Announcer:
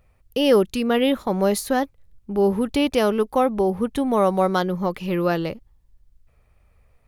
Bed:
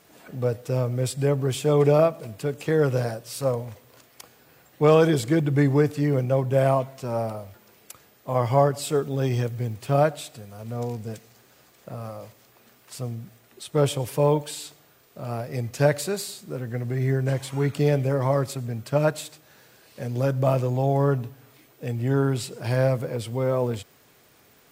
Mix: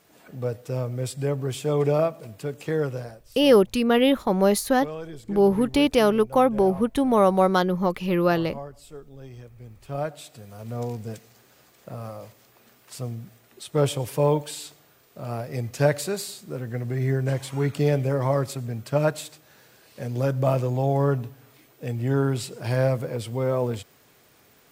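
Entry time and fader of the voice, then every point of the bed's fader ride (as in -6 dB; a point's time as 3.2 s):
3.00 s, +0.5 dB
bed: 2.77 s -3.5 dB
3.41 s -18.5 dB
9.46 s -18.5 dB
10.52 s -0.5 dB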